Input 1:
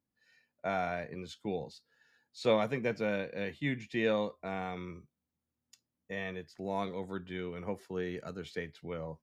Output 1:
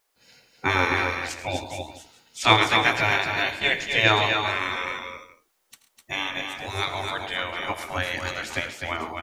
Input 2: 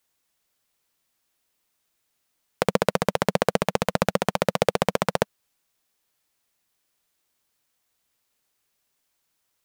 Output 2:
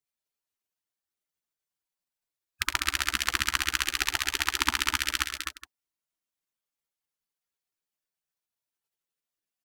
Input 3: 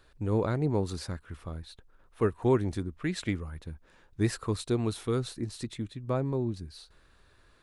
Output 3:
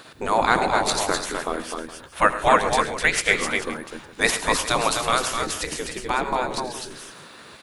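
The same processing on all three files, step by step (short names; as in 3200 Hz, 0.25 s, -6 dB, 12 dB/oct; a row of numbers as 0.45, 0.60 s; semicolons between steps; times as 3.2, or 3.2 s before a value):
spectral gate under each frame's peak -15 dB weak; on a send: tapped delay 82/106/135/253/266/416 ms -16.5/-15/-19/-6/-12/-17.5 dB; on the sum: normalise peaks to -2 dBFS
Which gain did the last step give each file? +20.5, +4.0, +21.5 dB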